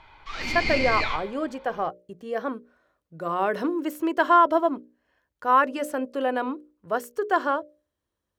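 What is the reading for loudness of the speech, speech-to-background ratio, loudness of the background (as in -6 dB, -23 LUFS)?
-25.5 LUFS, 2.5 dB, -28.0 LUFS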